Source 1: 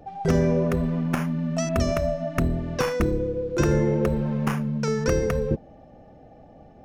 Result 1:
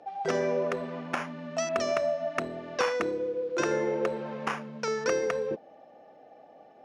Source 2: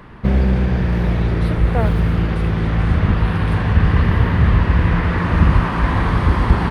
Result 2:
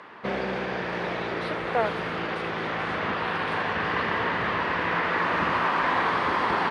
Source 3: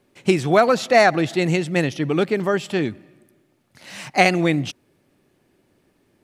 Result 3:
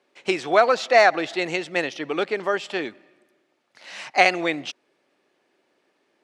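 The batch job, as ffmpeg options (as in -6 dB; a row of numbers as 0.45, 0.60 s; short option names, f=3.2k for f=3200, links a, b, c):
-af "highpass=480,lowpass=5.8k"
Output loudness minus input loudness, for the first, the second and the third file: -6.0, -9.5, -2.5 LU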